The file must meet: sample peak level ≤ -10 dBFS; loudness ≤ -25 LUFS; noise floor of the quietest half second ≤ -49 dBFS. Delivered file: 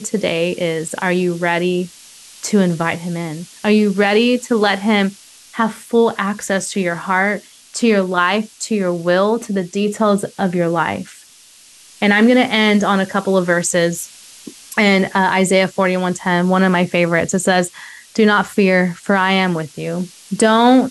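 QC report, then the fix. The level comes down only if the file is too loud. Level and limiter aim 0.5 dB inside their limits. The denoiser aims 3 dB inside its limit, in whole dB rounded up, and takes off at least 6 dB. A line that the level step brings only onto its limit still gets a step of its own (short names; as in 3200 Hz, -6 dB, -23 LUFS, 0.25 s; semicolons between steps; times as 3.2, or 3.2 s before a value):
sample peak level -3.0 dBFS: fail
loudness -16.5 LUFS: fail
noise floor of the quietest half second -45 dBFS: fail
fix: gain -9 dB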